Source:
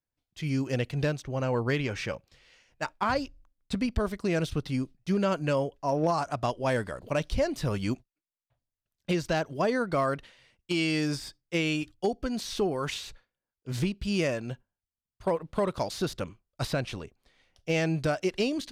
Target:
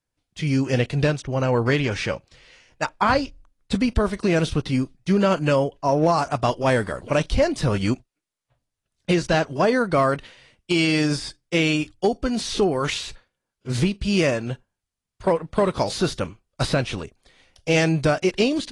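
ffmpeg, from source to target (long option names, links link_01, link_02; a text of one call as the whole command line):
ffmpeg -i in.wav -filter_complex "[0:a]asettb=1/sr,asplit=3[link_01][link_02][link_03];[link_01]atrim=end=17.014[link_04];[link_02]atrim=start=17.01:end=17.92,asetpts=PTS-STARTPTS,afade=type=in:duration=0.004:curve=qsin,afade=type=out:start_time=0.906:duration=0.004:curve=qsin,highshelf=frequency=5600:gain=6.5[link_05];[link_03]atrim=start=17.916[link_06];[link_04][link_05]acrossfade=duration=0.004:curve1=hsin:curve2=qsin[link_07];[link_07][link_06]acrossfade=duration=0.004:curve1=qsin:curve2=hsin,volume=7.5dB" -ar 24000 -c:a aac -b:a 32k out.aac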